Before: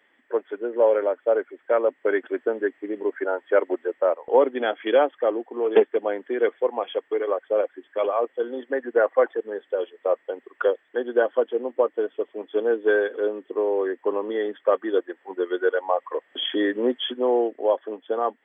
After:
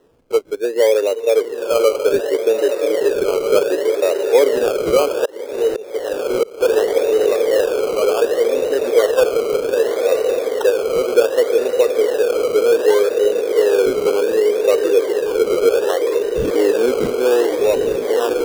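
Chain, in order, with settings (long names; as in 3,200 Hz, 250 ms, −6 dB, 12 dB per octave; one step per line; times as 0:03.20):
on a send: feedback delay with all-pass diffusion 1,018 ms, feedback 73%, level −6 dB
on the sum: pitch vibrato 2.3 Hz 11 cents
high-shelf EQ 2,700 Hz +10 dB
0:04.99–0:06.61: volume swells 708 ms
in parallel at −1.5 dB: brickwall limiter −18 dBFS, peak gain reduction 12 dB
on the sum: sample-and-hold swept by an LFO 19×, swing 60% 0.66 Hz
parametric band 450 Hz +12 dB 0.73 octaves
level −6 dB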